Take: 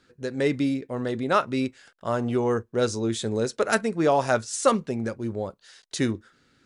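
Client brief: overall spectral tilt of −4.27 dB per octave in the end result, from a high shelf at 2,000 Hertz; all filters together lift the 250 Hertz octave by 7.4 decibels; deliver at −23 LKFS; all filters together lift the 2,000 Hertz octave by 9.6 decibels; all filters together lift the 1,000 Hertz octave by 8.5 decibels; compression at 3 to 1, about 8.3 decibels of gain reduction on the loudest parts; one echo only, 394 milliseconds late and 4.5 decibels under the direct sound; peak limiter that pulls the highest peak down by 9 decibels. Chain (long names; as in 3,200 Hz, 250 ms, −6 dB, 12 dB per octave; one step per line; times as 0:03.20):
parametric band 250 Hz +8 dB
parametric band 1,000 Hz +7 dB
high-shelf EQ 2,000 Hz +7 dB
parametric band 2,000 Hz +6 dB
downward compressor 3 to 1, threshold −19 dBFS
brickwall limiter −13 dBFS
single-tap delay 394 ms −4.5 dB
level +1 dB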